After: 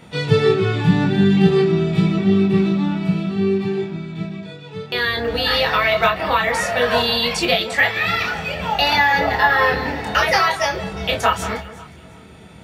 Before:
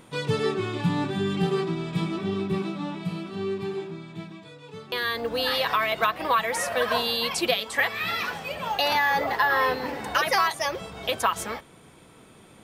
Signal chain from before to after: band-stop 1 kHz, Q 25; echo whose repeats swap between lows and highs 179 ms, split 2.1 kHz, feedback 52%, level -13 dB; reverberation RT60 0.10 s, pre-delay 20 ms, DRR 3 dB; trim -1 dB

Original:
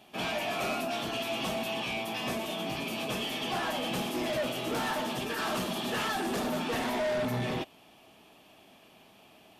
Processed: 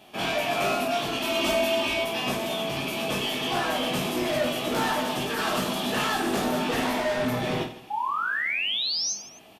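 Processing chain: 1.22–2.04 s: comb 3.2 ms, depth 93%; 7.90–9.13 s: painted sound rise 800–6500 Hz -33 dBFS; reverse bouncing-ball echo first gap 20 ms, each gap 1.5×, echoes 5; trim +3.5 dB

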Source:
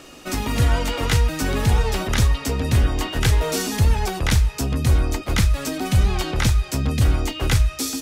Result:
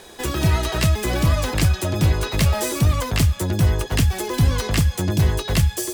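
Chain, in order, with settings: speed mistake 33 rpm record played at 45 rpm

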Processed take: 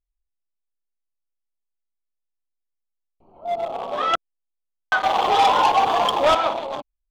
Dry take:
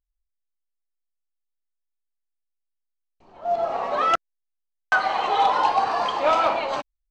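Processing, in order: local Wiener filter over 25 samples; peaking EQ 3.4 kHz +10 dB 0.26 oct; 5.03–6.35 s: waveshaping leveller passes 2

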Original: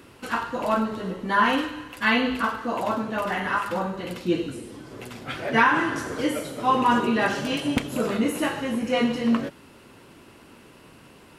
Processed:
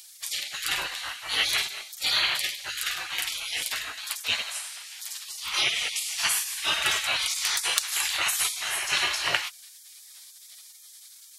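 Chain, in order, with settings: spectral gate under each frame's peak -25 dB weak; tilt shelf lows -9 dB, about 820 Hz; trim +7.5 dB

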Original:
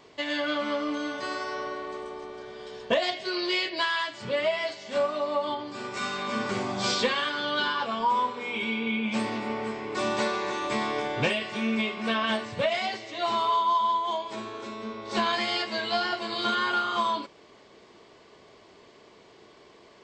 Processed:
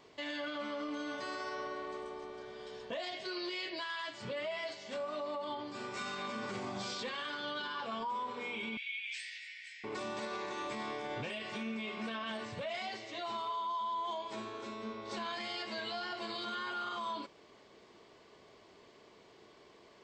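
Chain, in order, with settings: 8.77–9.84 s: steep high-pass 1.7 kHz 96 dB/octave; peak limiter -25.5 dBFS, peak gain reduction 11.5 dB; trim -6 dB

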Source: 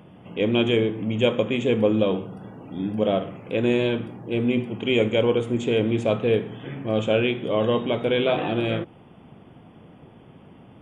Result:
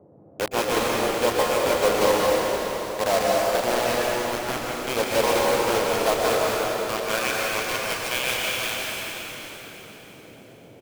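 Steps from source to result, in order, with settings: local Wiener filter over 15 samples; dynamic bell 1.1 kHz, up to +6 dB, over -38 dBFS, Q 1.1; band-pass sweep 890 Hz -> 2.7 kHz, 5.90–8.28 s; bit crusher 5-bit; frequency-shifting echo 321 ms, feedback 57%, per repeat -31 Hz, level -13.5 dB; band noise 87–620 Hz -58 dBFS; plate-style reverb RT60 3.9 s, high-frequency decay 0.85×, pre-delay 110 ms, DRR -4 dB; trim +4.5 dB

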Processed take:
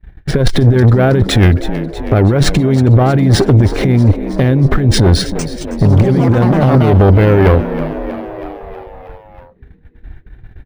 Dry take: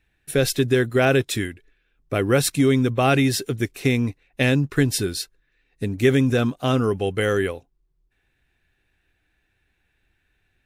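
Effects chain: RIAA curve playback; band-stop 2.6 kHz, Q 5.3; gate -51 dBFS, range -30 dB; FFT filter 230 Hz 0 dB, 490 Hz +2 dB, 750 Hz +5 dB, 9.6 kHz -3 dB; compressor with a negative ratio -17 dBFS, ratio -0.5; valve stage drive 18 dB, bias 0.45; 5.17–7.35 s: ever faster or slower copies 219 ms, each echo +6 st, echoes 2, each echo -6 dB; frequency-shifting echo 320 ms, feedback 63%, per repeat +73 Hz, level -16 dB; loudness maximiser +18.5 dB; decimation joined by straight lines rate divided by 3×; trim -1 dB

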